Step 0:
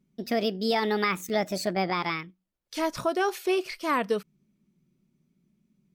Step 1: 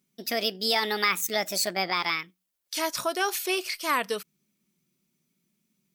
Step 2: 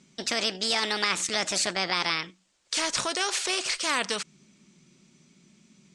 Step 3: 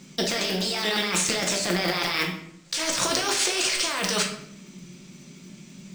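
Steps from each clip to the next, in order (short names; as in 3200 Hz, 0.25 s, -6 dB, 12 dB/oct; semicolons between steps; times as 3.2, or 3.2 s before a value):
tilt +3.5 dB/oct
steep low-pass 8200 Hz 48 dB/oct; spectral compressor 2:1
block floating point 5-bit; negative-ratio compressor -33 dBFS, ratio -1; shoebox room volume 150 m³, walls mixed, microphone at 0.82 m; gain +5 dB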